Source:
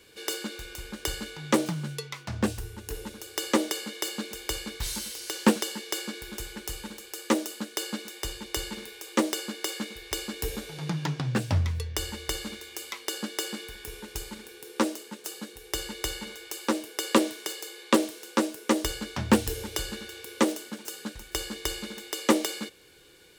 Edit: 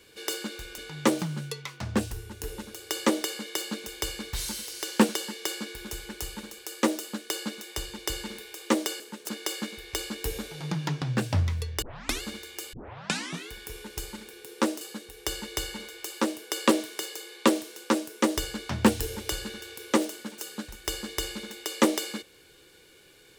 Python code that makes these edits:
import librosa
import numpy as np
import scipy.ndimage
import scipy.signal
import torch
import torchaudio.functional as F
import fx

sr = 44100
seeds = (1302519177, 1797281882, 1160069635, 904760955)

y = fx.edit(x, sr, fx.cut(start_s=0.78, length_s=0.47),
    fx.tape_start(start_s=12.0, length_s=0.4),
    fx.tape_start(start_s=12.91, length_s=0.78),
    fx.move(start_s=14.99, length_s=0.29, to_s=9.47), tone=tone)